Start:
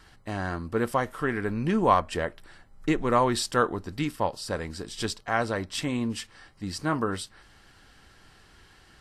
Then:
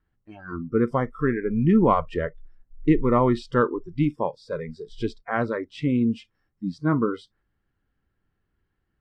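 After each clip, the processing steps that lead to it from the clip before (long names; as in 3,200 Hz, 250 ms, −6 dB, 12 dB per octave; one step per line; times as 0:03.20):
Bessel low-pass filter 1,100 Hz, order 2
noise reduction from a noise print of the clip's start 25 dB
parametric band 790 Hz −8.5 dB 1.6 octaves
level +9 dB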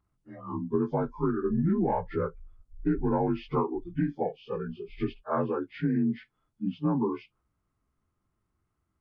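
partials spread apart or drawn together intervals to 85%
downward compressor 5 to 1, threshold −23 dBFS, peak gain reduction 8.5 dB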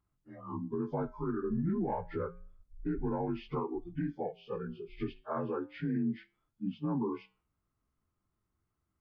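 brickwall limiter −21 dBFS, peak gain reduction 7 dB
flanger 0.3 Hz, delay 6.6 ms, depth 3.2 ms, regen −88%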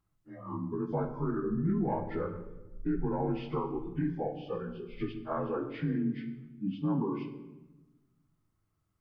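rectangular room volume 580 cubic metres, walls mixed, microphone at 0.63 metres
level +1.5 dB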